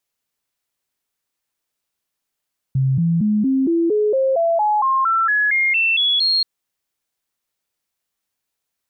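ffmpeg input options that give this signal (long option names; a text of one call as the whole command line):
ffmpeg -f lavfi -i "aevalsrc='0.2*clip(min(mod(t,0.23),0.23-mod(t,0.23))/0.005,0,1)*sin(2*PI*133*pow(2,floor(t/0.23)/3)*mod(t,0.23))':duration=3.68:sample_rate=44100" out.wav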